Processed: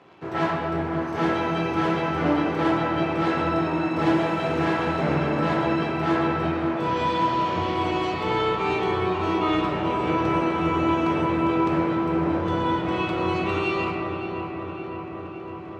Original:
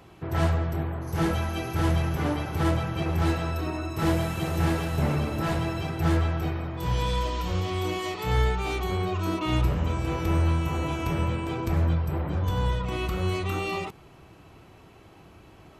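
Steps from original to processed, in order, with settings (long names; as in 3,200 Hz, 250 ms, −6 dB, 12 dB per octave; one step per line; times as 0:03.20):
in parallel at −8.5 dB: bit reduction 7 bits
on the sum: band-pass filter 230–3,600 Hz
feedback echo with a low-pass in the loop 561 ms, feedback 77%, low-pass 2,700 Hz, level −8.5 dB
convolution reverb RT60 2.6 s, pre-delay 7 ms, DRR 0 dB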